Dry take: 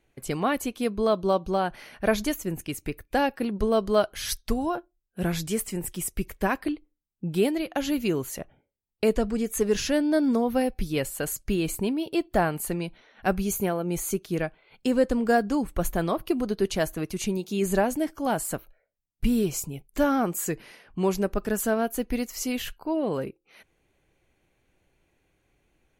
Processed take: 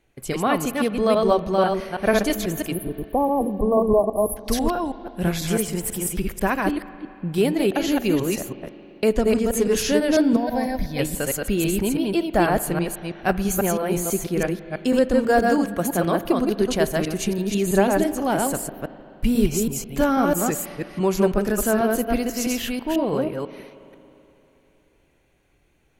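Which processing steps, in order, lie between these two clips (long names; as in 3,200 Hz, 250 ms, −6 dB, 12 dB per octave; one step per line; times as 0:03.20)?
delay that plays each chunk backwards 164 ms, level −2 dB
0:02.73–0:04.37: time-frequency box erased 1,200–9,400 Hz
0:10.36–0:10.99: phaser with its sweep stopped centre 1,900 Hz, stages 8
0:15.49–0:16.23: high-pass filter 130 Hz
spring reverb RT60 3.2 s, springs 39/55 ms, chirp 30 ms, DRR 14.5 dB
level +3 dB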